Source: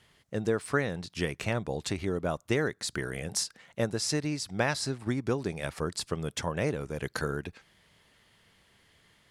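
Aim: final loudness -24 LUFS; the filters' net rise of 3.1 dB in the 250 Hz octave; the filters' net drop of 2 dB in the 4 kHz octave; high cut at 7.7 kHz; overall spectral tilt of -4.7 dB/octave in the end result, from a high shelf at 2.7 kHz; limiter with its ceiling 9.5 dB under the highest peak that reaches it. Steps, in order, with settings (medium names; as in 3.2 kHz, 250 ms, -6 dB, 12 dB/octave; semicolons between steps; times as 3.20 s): low-pass 7.7 kHz; peaking EQ 250 Hz +4 dB; treble shelf 2.7 kHz +4 dB; peaking EQ 4 kHz -6 dB; trim +9.5 dB; peak limiter -11 dBFS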